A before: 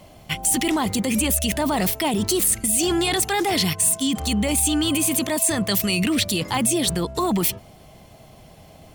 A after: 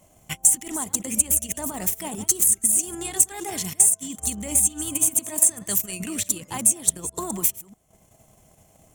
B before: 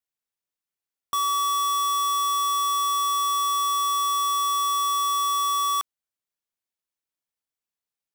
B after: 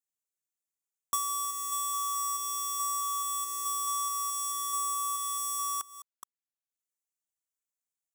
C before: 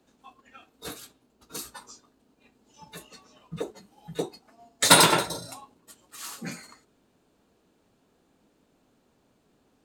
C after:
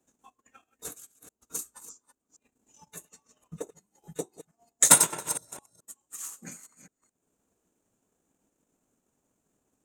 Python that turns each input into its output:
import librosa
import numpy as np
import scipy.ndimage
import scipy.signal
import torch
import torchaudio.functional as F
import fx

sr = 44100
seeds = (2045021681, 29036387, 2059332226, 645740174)

y = fx.reverse_delay(x, sr, ms=215, wet_db=-10.5)
y = fx.high_shelf_res(y, sr, hz=5600.0, db=7.5, q=3.0)
y = fx.transient(y, sr, attack_db=7, sustain_db=-10)
y = y * 10.0 ** (-11.0 / 20.0)